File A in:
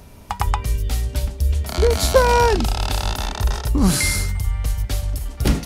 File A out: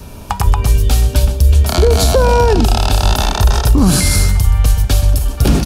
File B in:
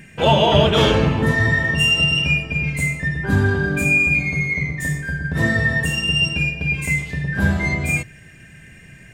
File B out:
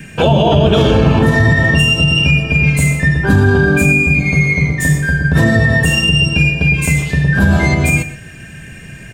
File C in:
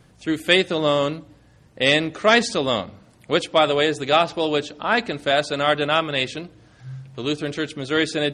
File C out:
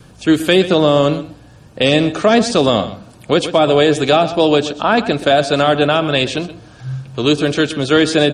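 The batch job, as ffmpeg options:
-filter_complex "[0:a]bandreject=f=2000:w=5.9,adynamicequalizer=threshold=0.0141:dfrequency=700:dqfactor=6.3:tfrequency=700:tqfactor=6.3:attack=5:release=100:ratio=0.375:range=2.5:mode=boostabove:tftype=bell,acrossover=split=440[s0][s1];[s1]acompressor=threshold=0.0708:ratio=6[s2];[s0][s2]amix=inputs=2:normalize=0,asplit=2[s3][s4];[s4]aecho=0:1:125:0.178[s5];[s3][s5]amix=inputs=2:normalize=0,alimiter=level_in=3.98:limit=0.891:release=50:level=0:latency=1,volume=0.891"

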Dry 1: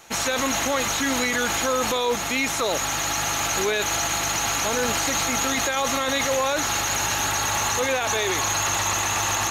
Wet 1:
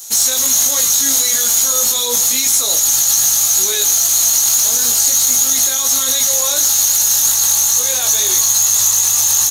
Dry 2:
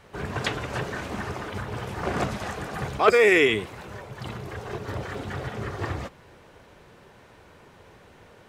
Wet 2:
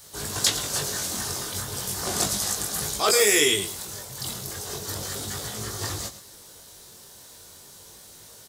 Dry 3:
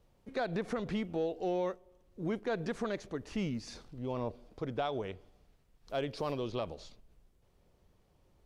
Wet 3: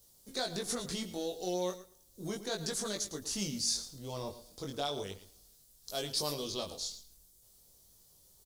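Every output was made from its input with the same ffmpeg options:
-filter_complex "[0:a]aexciter=amount=4:drive=8.7:freq=3600,asplit=2[s0][s1];[s1]aecho=0:1:111|222:0.2|0.0359[s2];[s0][s2]amix=inputs=2:normalize=0,alimiter=limit=0.447:level=0:latency=1:release=65,highshelf=f=5300:g=11,flanger=delay=19:depth=3.2:speed=0.35,volume=0.891"

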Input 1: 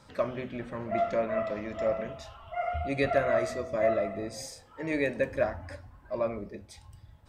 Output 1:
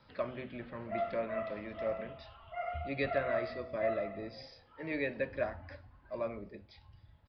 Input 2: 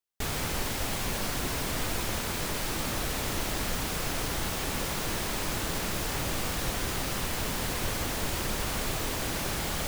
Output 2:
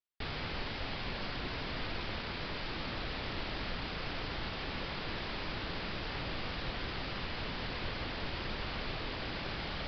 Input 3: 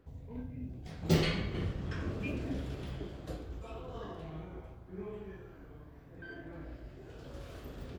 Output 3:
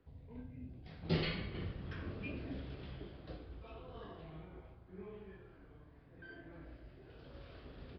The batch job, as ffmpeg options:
-filter_complex "[0:a]acrossover=split=420|920|3200[s0][s1][s2][s3];[s2]crystalizer=i=3:c=0[s4];[s0][s1][s4][s3]amix=inputs=4:normalize=0,aresample=11025,aresample=44100,volume=0.447"

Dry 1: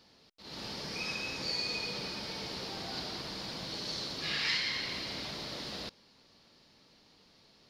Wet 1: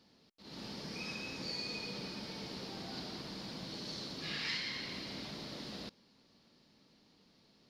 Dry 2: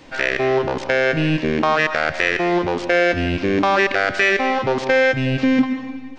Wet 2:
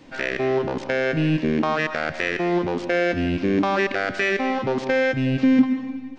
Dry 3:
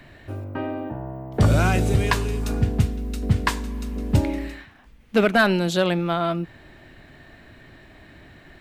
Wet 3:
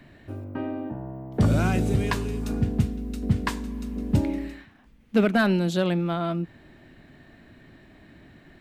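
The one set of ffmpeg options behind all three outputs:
-af "equalizer=f=220:t=o:w=1.5:g=7.5,volume=0.473"

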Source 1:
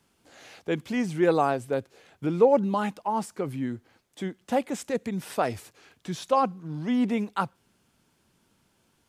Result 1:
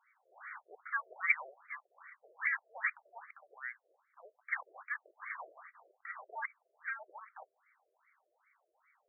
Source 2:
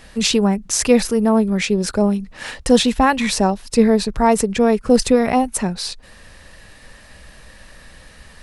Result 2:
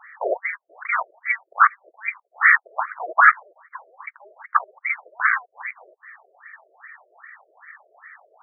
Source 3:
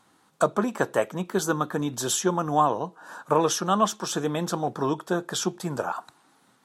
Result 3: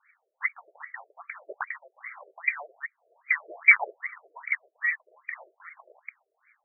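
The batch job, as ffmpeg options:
-filter_complex "[0:a]asplit=2[s0][s1];[s1]highpass=f=720:p=1,volume=22.4,asoftclip=type=tanh:threshold=0.891[s2];[s0][s2]amix=inputs=2:normalize=0,lowpass=f=2300:p=1,volume=0.501,afwtdn=0.178,lowpass=f=3100:t=q:w=0.5098,lowpass=f=3100:t=q:w=0.6013,lowpass=f=3100:t=q:w=0.9,lowpass=f=3100:t=q:w=2.563,afreqshift=-3600,afftfilt=real='re*between(b*sr/1024,470*pow(1700/470,0.5+0.5*sin(2*PI*2.5*pts/sr))/1.41,470*pow(1700/470,0.5+0.5*sin(2*PI*2.5*pts/sr))*1.41)':imag='im*between(b*sr/1024,470*pow(1700/470,0.5+0.5*sin(2*PI*2.5*pts/sr))/1.41,470*pow(1700/470,0.5+0.5*sin(2*PI*2.5*pts/sr))*1.41)':win_size=1024:overlap=0.75,volume=1.88"

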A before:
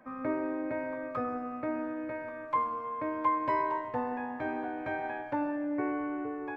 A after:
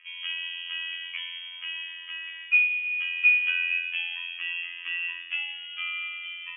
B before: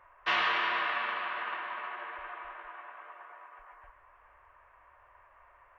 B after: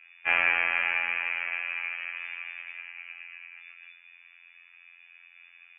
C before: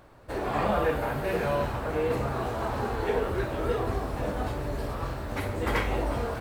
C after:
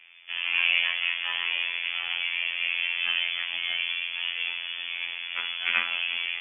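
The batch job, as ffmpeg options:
-af "afftfilt=real='hypot(re,im)*cos(PI*b)':imag='0':win_size=2048:overlap=0.75,equalizer=f=125:t=o:w=1:g=-11,equalizer=f=500:t=o:w=1:g=-4,equalizer=f=1000:t=o:w=1:g=9,lowpass=f=3000:t=q:w=0.5098,lowpass=f=3000:t=q:w=0.6013,lowpass=f=3000:t=q:w=0.9,lowpass=f=3000:t=q:w=2.563,afreqshift=-3500,volume=1.41"

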